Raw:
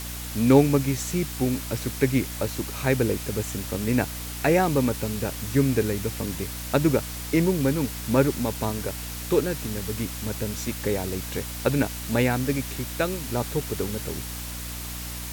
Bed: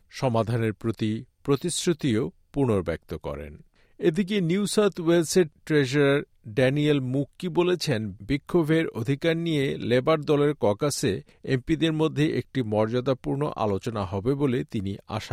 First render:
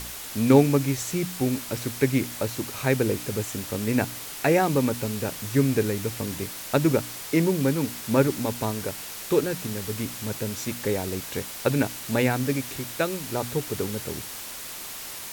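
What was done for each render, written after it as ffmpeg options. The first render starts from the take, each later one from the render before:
-af "bandreject=f=60:t=h:w=4,bandreject=f=120:t=h:w=4,bandreject=f=180:t=h:w=4,bandreject=f=240:t=h:w=4,bandreject=f=300:t=h:w=4"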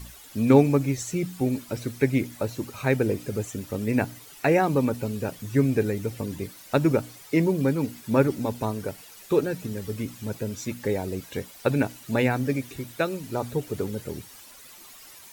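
-af "afftdn=nr=13:nf=-37"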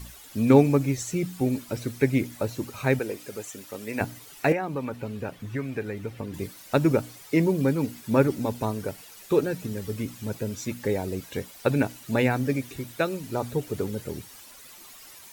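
-filter_complex "[0:a]asettb=1/sr,asplit=3[s0][s1][s2];[s0]atrim=end=2.994[s3];[s1]atrim=start=2.99:end=4.01,asetpts=PTS-STARTPTS,afade=t=in:d=0.004:c=qsin,afade=t=out:st=1.016:d=0.004:c=qsin,highpass=f=730:p=1[s4];[s2]atrim=start=4.006[s5];[s3][s4]acrossfade=d=0.004:c1=hsin:c2=qsin[s6];[s6][s5]acrossfade=d=0.004:c1=qsin:c2=hsin,asettb=1/sr,asplit=3[s7][s8][s9];[s7]atrim=end=4.524[s10];[s8]atrim=start=4.52:end=6.34,asetpts=PTS-STARTPTS,afade=t=in:d=0.004:c=qsin,afade=t=out:st=1.816:d=0.004:c=qsin,acrossover=split=730|3400[s11][s12][s13];[s11]acompressor=threshold=0.0282:ratio=4[s14];[s12]acompressor=threshold=0.0224:ratio=4[s15];[s13]acompressor=threshold=0.001:ratio=4[s16];[s14][s15][s16]amix=inputs=3:normalize=0[s17];[s9]atrim=start=6.336[s18];[s10][s17]acrossfade=d=0.004:c1=hsin:c2=qsin[s19];[s19][s18]acrossfade=d=0.004:c1=qsin:c2=hsin"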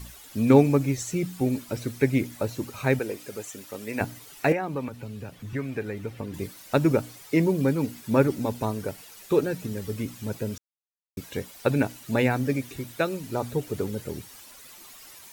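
-filter_complex "[0:a]asettb=1/sr,asplit=3[s0][s1][s2];[s0]atrim=end=4.884[s3];[s1]atrim=start=4.88:end=5.53,asetpts=PTS-STARTPTS,afade=t=in:d=0.004:c=qsin,afade=t=out:st=0.646:d=0.004:c=qsin,acrossover=split=170|3000[s4][s5][s6];[s5]acompressor=threshold=0.00562:ratio=2:attack=3.2:release=140:knee=2.83:detection=peak[s7];[s4][s7][s6]amix=inputs=3:normalize=0[s8];[s2]atrim=start=5.526[s9];[s3][s8]acrossfade=d=0.004:c1=hsin:c2=qsin[s10];[s10][s9]acrossfade=d=0.004:c1=qsin:c2=hsin,asplit=3[s11][s12][s13];[s11]atrim=end=10.58,asetpts=PTS-STARTPTS,afade=t=out:st=10.576:d=0.004:c=hsin[s14];[s12]atrim=start=10.58:end=11.17,asetpts=PTS-STARTPTS,volume=0[s15];[s13]atrim=start=11.17,asetpts=PTS-STARTPTS,afade=t=in:d=0.004:c=hsin[s16];[s14][s15][s16]concat=n=3:v=0:a=1"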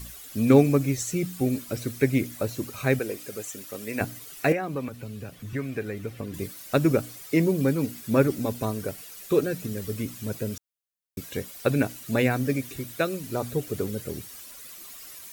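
-af "highshelf=f=8000:g=6.5,bandreject=f=890:w=5.6"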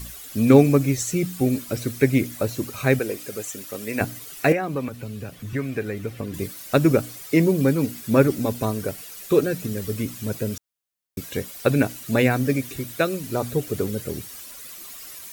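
-af "volume=1.58,alimiter=limit=0.794:level=0:latency=1"

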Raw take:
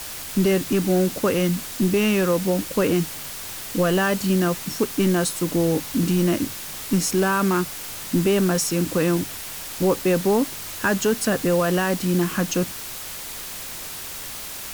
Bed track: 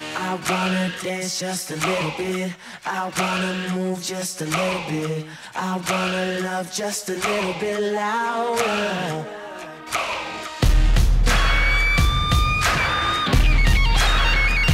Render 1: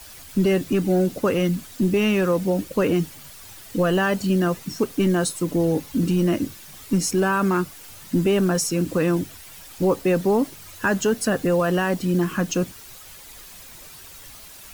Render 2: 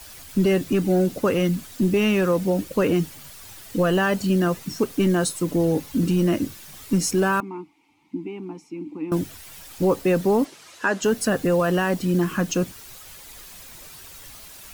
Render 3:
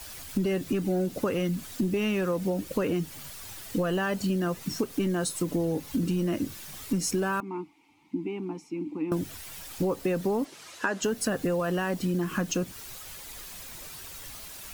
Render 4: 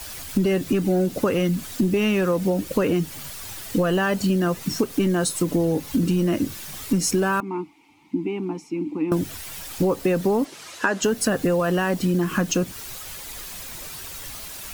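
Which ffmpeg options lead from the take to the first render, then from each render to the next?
-af "afftdn=nr=11:nf=-34"
-filter_complex "[0:a]asettb=1/sr,asplit=3[s0][s1][s2];[s0]atrim=end=7.404[s3];[s1]atrim=start=7.4:end=9.12,asetpts=PTS-STARTPTS,afade=t=in:d=0.004:c=qsin,afade=t=out:st=1.716:d=0.004:c=qsin,asplit=3[s4][s5][s6];[s4]bandpass=f=300:t=q:w=8,volume=1[s7];[s5]bandpass=f=870:t=q:w=8,volume=0.501[s8];[s6]bandpass=f=2240:t=q:w=8,volume=0.355[s9];[s7][s8][s9]amix=inputs=3:normalize=0[s10];[s2]atrim=start=9.116[s11];[s3][s10]acrossfade=d=0.004:c1=hsin:c2=qsin[s12];[s12][s11]acrossfade=d=0.004:c1=qsin:c2=hsin,asplit=3[s13][s14][s15];[s13]afade=t=out:st=10.44:d=0.02[s16];[s14]highpass=290,lowpass=7300,afade=t=in:st=10.44:d=0.02,afade=t=out:st=11.02:d=0.02[s17];[s15]afade=t=in:st=11.02:d=0.02[s18];[s16][s17][s18]amix=inputs=3:normalize=0"
-af "acompressor=threshold=0.0562:ratio=5"
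-af "volume=2.11"

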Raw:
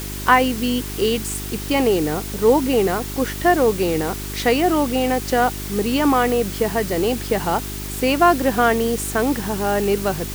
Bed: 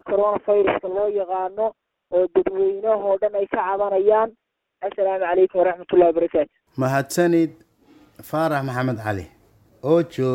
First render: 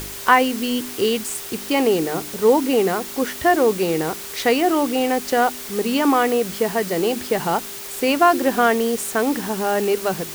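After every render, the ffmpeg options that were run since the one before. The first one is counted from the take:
-af "bandreject=f=50:t=h:w=4,bandreject=f=100:t=h:w=4,bandreject=f=150:t=h:w=4,bandreject=f=200:t=h:w=4,bandreject=f=250:t=h:w=4,bandreject=f=300:t=h:w=4,bandreject=f=350:t=h:w=4"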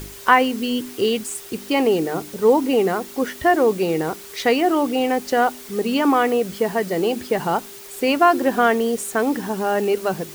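-af "afftdn=nr=7:nf=-33"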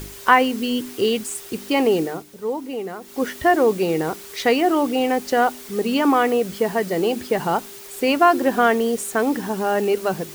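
-filter_complex "[0:a]asplit=3[s0][s1][s2];[s0]atrim=end=2.24,asetpts=PTS-STARTPTS,afade=t=out:st=2.01:d=0.23:silence=0.298538[s3];[s1]atrim=start=2.24:end=3.01,asetpts=PTS-STARTPTS,volume=0.299[s4];[s2]atrim=start=3.01,asetpts=PTS-STARTPTS,afade=t=in:d=0.23:silence=0.298538[s5];[s3][s4][s5]concat=n=3:v=0:a=1"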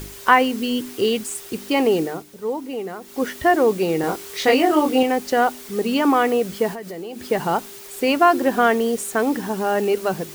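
-filter_complex "[0:a]asettb=1/sr,asplit=3[s0][s1][s2];[s0]atrim=end=4.014[s3];[s1]atrim=start=4.01:end=5.03,asetpts=PTS-STARTPTS,afade=t=in:d=0.004:c=qsin,afade=t=out:st=1.016:d=0.004:c=qsin,asplit=2[s4][s5];[s5]adelay=23,volume=0.794[s6];[s4][s6]amix=inputs=2:normalize=0,atrim=end_sample=44982[s7];[s2]atrim=start=5.026[s8];[s3][s7]acrossfade=d=0.004:c1=hsin:c2=qsin[s9];[s9][s8]acrossfade=d=0.004:c1=qsin:c2=hsin,asettb=1/sr,asplit=3[s10][s11][s12];[s10]atrim=end=6.734[s13];[s11]atrim=start=6.73:end=7.27,asetpts=PTS-STARTPTS,afade=t=in:d=0.004:c=qsin,afade=t=out:st=0.536:d=0.004:c=qsin,acompressor=threshold=0.0316:ratio=5:attack=3.2:release=140:knee=1:detection=peak[s14];[s12]atrim=start=7.266[s15];[s13][s14]acrossfade=d=0.004:c1=hsin:c2=qsin[s16];[s16][s15]acrossfade=d=0.004:c1=qsin:c2=hsin"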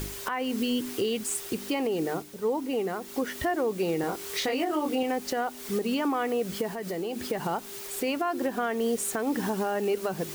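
-af "acompressor=threshold=0.0708:ratio=3,alimiter=limit=0.112:level=0:latency=1:release=238"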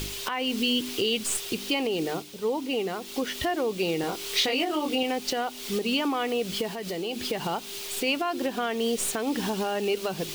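-filter_complex "[0:a]acrossover=split=5600[s0][s1];[s0]aexciter=amount=2.3:drive=8.7:freq=2500[s2];[s1]aeval=exprs='0.106*(cos(1*acos(clip(val(0)/0.106,-1,1)))-cos(1*PI/2))+0.015*(cos(6*acos(clip(val(0)/0.106,-1,1)))-cos(6*PI/2))':c=same[s3];[s2][s3]amix=inputs=2:normalize=0"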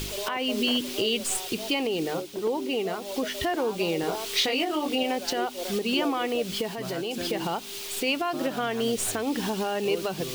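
-filter_complex "[1:a]volume=0.126[s0];[0:a][s0]amix=inputs=2:normalize=0"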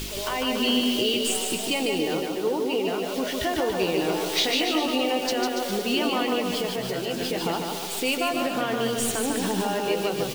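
-filter_complex "[0:a]asplit=2[s0][s1];[s1]adelay=16,volume=0.299[s2];[s0][s2]amix=inputs=2:normalize=0,asplit=2[s3][s4];[s4]aecho=0:1:150|285|406.5|515.8|614.3:0.631|0.398|0.251|0.158|0.1[s5];[s3][s5]amix=inputs=2:normalize=0"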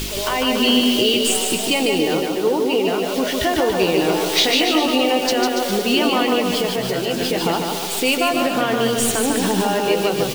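-af "volume=2.24"

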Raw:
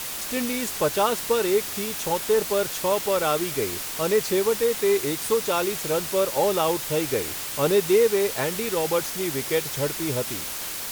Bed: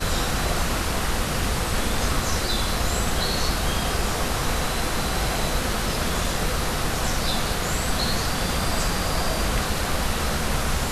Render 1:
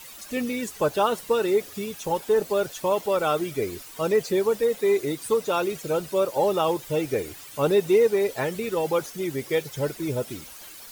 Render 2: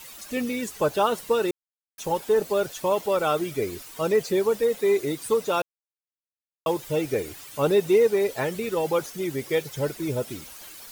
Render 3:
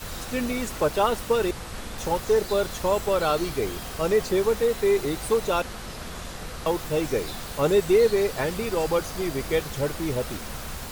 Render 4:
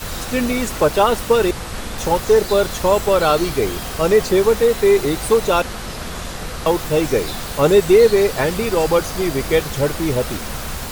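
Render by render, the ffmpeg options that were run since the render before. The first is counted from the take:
-af "afftdn=nr=14:nf=-32"
-filter_complex "[0:a]asplit=5[s0][s1][s2][s3][s4];[s0]atrim=end=1.51,asetpts=PTS-STARTPTS,afade=t=out:st=1.506:d=0.004:c=hsin[s5];[s1]atrim=start=1.51:end=1.98,asetpts=PTS-STARTPTS,volume=0[s6];[s2]atrim=start=1.98:end=5.62,asetpts=PTS-STARTPTS,afade=t=in:d=0.004:c=hsin,afade=t=out:st=3.636:d=0.004:c=hsin[s7];[s3]atrim=start=5.62:end=6.66,asetpts=PTS-STARTPTS,volume=0[s8];[s4]atrim=start=6.66,asetpts=PTS-STARTPTS,afade=t=in:d=0.004:c=hsin[s9];[s5][s6][s7][s8][s9]concat=n=5:v=0:a=1"
-filter_complex "[1:a]volume=0.251[s0];[0:a][s0]amix=inputs=2:normalize=0"
-af "volume=2.51,alimiter=limit=0.708:level=0:latency=1"

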